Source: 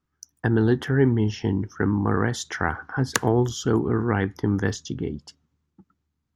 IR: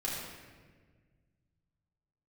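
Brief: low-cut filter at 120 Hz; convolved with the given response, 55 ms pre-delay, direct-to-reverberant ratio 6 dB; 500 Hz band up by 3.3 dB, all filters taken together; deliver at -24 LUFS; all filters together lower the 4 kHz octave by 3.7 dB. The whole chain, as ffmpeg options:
-filter_complex "[0:a]highpass=120,equalizer=f=500:t=o:g=4.5,equalizer=f=4000:t=o:g=-5,asplit=2[s0][s1];[1:a]atrim=start_sample=2205,adelay=55[s2];[s1][s2]afir=irnorm=-1:irlink=0,volume=0.299[s3];[s0][s3]amix=inputs=2:normalize=0,volume=0.794"

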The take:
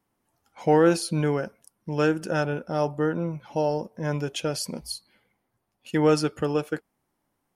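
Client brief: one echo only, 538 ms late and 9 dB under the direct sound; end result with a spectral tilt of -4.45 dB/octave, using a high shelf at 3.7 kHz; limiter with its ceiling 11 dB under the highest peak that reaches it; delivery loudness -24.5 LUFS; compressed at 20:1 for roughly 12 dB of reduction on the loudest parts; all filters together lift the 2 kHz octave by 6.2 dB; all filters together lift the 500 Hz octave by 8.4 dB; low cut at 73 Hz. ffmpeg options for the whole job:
-af "highpass=73,equalizer=f=500:t=o:g=9,equalizer=f=2000:t=o:g=6.5,highshelf=f=3700:g=6.5,acompressor=threshold=0.112:ratio=20,alimiter=limit=0.0891:level=0:latency=1,aecho=1:1:538:0.355,volume=2.11"

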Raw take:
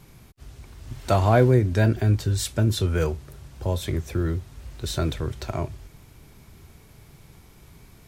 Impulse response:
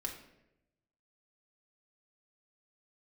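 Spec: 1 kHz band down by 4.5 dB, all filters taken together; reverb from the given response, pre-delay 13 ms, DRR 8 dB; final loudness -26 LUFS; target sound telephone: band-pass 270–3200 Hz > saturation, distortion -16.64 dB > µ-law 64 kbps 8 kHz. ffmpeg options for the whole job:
-filter_complex "[0:a]equalizer=f=1000:t=o:g=-7,asplit=2[s0][s1];[1:a]atrim=start_sample=2205,adelay=13[s2];[s1][s2]afir=irnorm=-1:irlink=0,volume=0.398[s3];[s0][s3]amix=inputs=2:normalize=0,highpass=270,lowpass=3200,asoftclip=threshold=0.168,volume=1.68" -ar 8000 -c:a pcm_mulaw

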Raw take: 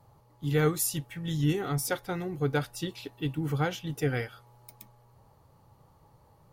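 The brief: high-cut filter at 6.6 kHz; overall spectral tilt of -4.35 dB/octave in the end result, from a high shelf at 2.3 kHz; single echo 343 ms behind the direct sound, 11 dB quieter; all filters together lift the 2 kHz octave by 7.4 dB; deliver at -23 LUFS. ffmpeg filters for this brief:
-af "lowpass=6600,equalizer=f=2000:t=o:g=6,highshelf=f=2300:g=8,aecho=1:1:343:0.282,volume=2"

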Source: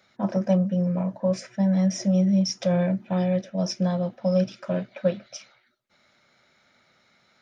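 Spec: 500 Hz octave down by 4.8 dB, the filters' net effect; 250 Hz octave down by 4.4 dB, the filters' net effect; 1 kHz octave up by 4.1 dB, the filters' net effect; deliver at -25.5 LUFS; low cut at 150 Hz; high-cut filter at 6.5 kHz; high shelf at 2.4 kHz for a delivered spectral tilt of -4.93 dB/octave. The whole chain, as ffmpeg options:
-af "highpass=150,lowpass=6500,equalizer=f=250:t=o:g=-4,equalizer=f=500:t=o:g=-7.5,equalizer=f=1000:t=o:g=8,highshelf=f=2400:g=8,volume=1.33"

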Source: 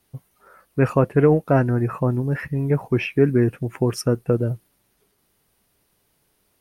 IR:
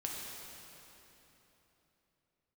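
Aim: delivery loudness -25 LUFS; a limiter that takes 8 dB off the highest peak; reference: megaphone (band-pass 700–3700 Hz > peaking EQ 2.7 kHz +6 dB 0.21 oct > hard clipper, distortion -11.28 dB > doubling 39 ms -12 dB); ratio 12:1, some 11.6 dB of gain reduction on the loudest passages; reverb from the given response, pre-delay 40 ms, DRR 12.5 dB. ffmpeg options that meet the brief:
-filter_complex "[0:a]acompressor=threshold=0.0708:ratio=12,alimiter=limit=0.1:level=0:latency=1,asplit=2[s0][s1];[1:a]atrim=start_sample=2205,adelay=40[s2];[s1][s2]afir=irnorm=-1:irlink=0,volume=0.2[s3];[s0][s3]amix=inputs=2:normalize=0,highpass=700,lowpass=3700,equalizer=f=2700:t=o:w=0.21:g=6,asoftclip=type=hard:threshold=0.0282,asplit=2[s4][s5];[s5]adelay=39,volume=0.251[s6];[s4][s6]amix=inputs=2:normalize=0,volume=5.62"

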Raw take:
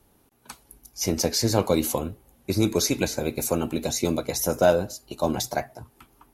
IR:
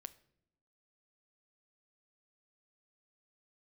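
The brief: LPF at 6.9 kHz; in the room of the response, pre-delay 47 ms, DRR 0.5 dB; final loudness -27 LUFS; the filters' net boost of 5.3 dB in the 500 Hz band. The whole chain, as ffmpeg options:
-filter_complex "[0:a]lowpass=6900,equalizer=f=500:t=o:g=6.5,asplit=2[s0][s1];[1:a]atrim=start_sample=2205,adelay=47[s2];[s1][s2]afir=irnorm=-1:irlink=0,volume=1.78[s3];[s0][s3]amix=inputs=2:normalize=0,volume=0.422"

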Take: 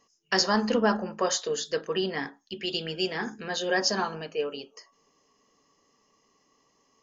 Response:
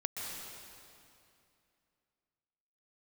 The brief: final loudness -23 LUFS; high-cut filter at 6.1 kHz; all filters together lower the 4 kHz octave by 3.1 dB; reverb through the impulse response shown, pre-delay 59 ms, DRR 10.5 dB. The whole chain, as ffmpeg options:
-filter_complex "[0:a]lowpass=6100,equalizer=f=4000:t=o:g=-3,asplit=2[s0][s1];[1:a]atrim=start_sample=2205,adelay=59[s2];[s1][s2]afir=irnorm=-1:irlink=0,volume=0.224[s3];[s0][s3]amix=inputs=2:normalize=0,volume=2"

